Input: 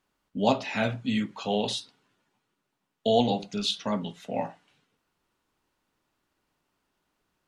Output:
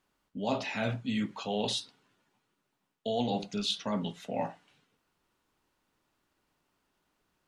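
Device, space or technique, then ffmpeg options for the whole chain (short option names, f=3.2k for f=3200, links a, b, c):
compression on the reversed sound: -af "areverse,acompressor=threshold=-28dB:ratio=5,areverse"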